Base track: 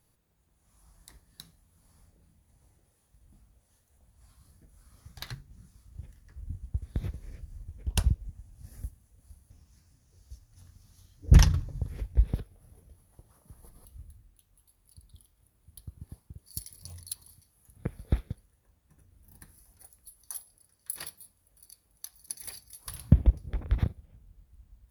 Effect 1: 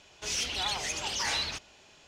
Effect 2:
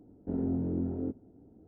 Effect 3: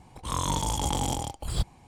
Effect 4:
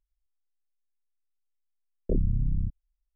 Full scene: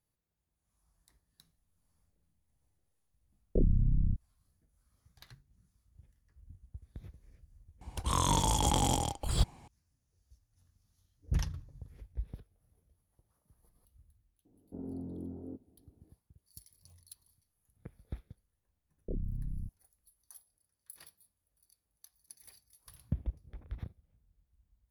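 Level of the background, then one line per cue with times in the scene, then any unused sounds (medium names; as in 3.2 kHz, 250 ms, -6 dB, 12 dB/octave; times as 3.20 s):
base track -15 dB
1.46 s: add 4 -1.5 dB
7.81 s: add 3 -0.5 dB
14.45 s: add 2 -10.5 dB + low-pass 1.3 kHz 24 dB/octave
16.99 s: add 4 -11.5 dB
not used: 1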